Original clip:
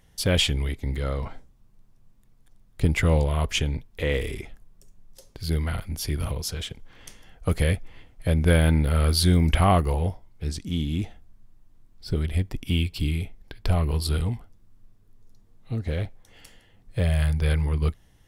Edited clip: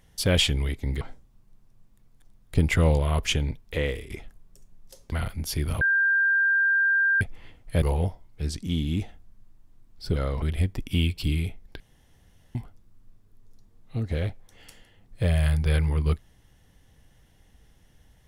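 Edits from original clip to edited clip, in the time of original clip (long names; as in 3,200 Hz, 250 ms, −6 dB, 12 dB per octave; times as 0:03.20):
0:01.01–0:01.27: move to 0:12.18
0:04.01–0:04.36: fade out, to −14.5 dB
0:05.38–0:05.64: remove
0:06.33–0:07.73: beep over 1,590 Hz −18.5 dBFS
0:08.34–0:09.84: remove
0:13.56–0:14.31: fill with room tone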